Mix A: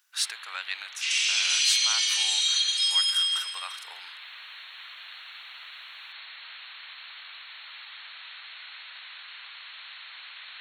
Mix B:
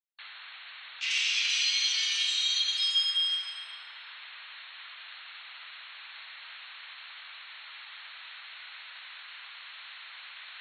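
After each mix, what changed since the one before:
speech: muted; master: add distance through air 120 m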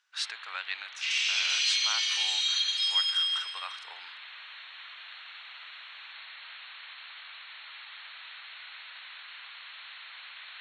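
speech: unmuted

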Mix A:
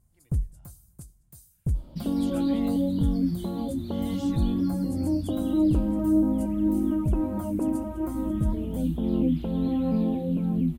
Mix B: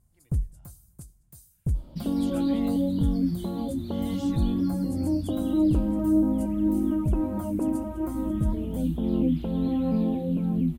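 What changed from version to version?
no change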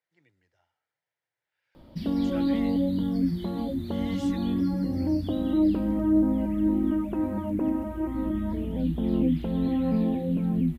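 first sound: muted; master: add peaking EQ 1.9 kHz +8 dB 0.57 oct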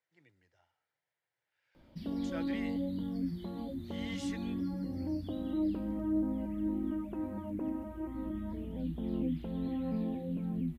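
background -10.0 dB

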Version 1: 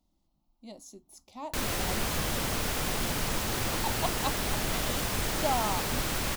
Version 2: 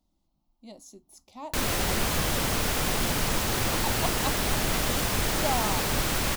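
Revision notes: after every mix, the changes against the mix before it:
background +4.0 dB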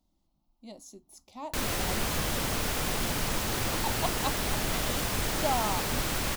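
background -5.0 dB; reverb: on, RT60 2.6 s

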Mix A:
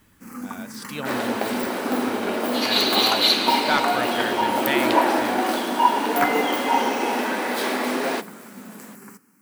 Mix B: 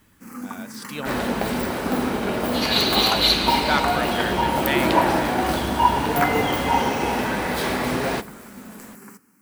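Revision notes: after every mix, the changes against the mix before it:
second sound: remove brick-wall FIR high-pass 210 Hz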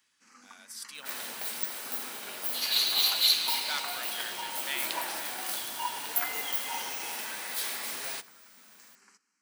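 first sound: add low-pass 5.7 kHz 24 dB/octave; master: add differentiator

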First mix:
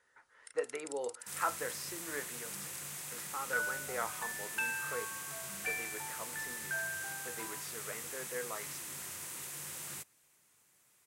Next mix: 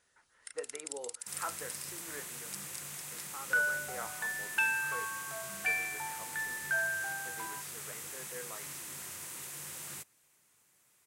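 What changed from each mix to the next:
speech -5.5 dB; first sound +6.0 dB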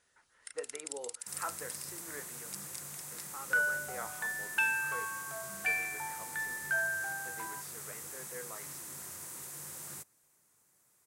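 second sound: add peaking EQ 2.8 kHz -8.5 dB 1.2 oct

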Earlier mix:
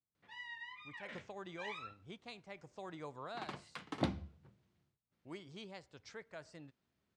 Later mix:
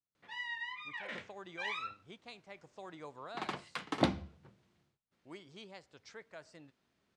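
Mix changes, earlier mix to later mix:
background +7.5 dB; master: add peaking EQ 77 Hz -7 dB 2.7 oct

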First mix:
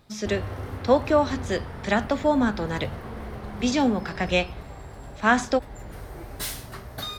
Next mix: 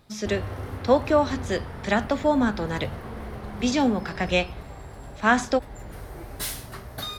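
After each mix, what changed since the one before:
master: add peaking EQ 11 kHz +4.5 dB 0.23 oct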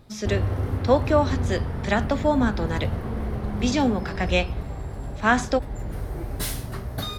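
background: add bass shelf 470 Hz +9.5 dB

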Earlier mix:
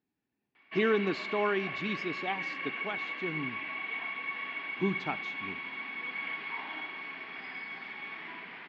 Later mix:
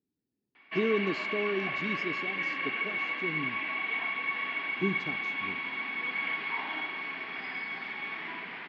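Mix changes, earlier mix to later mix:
speech: add high-order bell 1.5 kHz -14.5 dB 2.5 oct; background +4.5 dB

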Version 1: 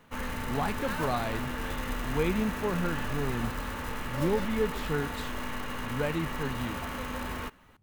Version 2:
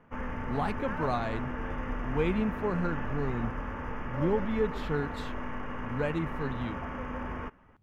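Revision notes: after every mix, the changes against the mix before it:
background: add boxcar filter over 11 samples; master: add treble shelf 6.4 kHz -11 dB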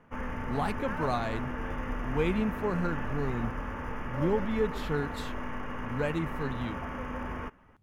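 master: add treble shelf 6.4 kHz +11 dB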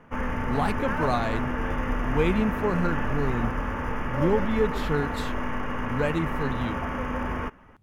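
speech +4.5 dB; background +7.0 dB

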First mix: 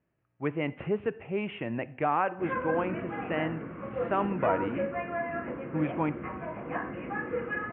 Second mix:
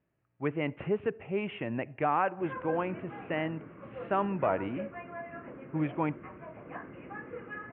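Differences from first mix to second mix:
background -4.5 dB; reverb: off

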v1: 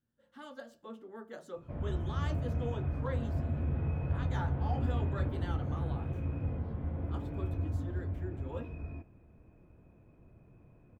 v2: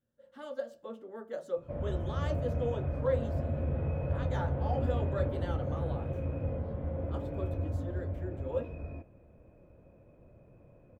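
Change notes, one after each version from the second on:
master: add peaking EQ 550 Hz +13 dB 0.41 oct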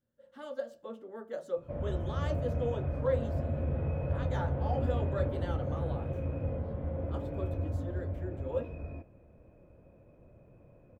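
no change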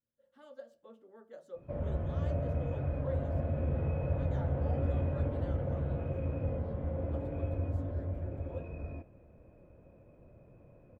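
speech -11.5 dB

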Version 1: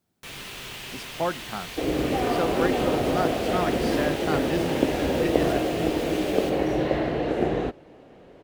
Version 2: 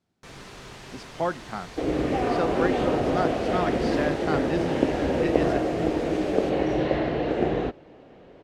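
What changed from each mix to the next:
first sound: add peaking EQ 2.9 kHz -11.5 dB 1.2 oct; master: add low-pass 5.9 kHz 12 dB/octave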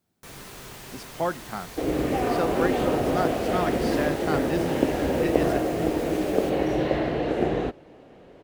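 master: remove low-pass 5.9 kHz 12 dB/octave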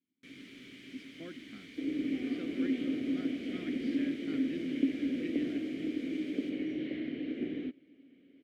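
first sound +5.5 dB; master: add vowel filter i

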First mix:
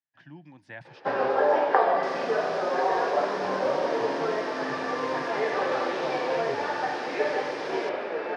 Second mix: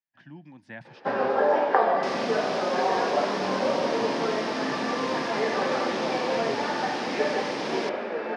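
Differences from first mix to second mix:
second sound +7.0 dB; master: add peaking EQ 220 Hz +13.5 dB 0.26 oct

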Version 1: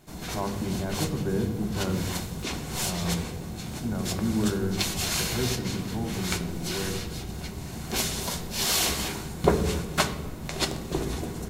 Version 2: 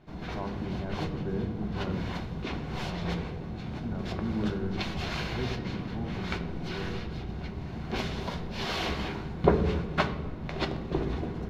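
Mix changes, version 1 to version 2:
speech -5.0 dB; master: add distance through air 300 m

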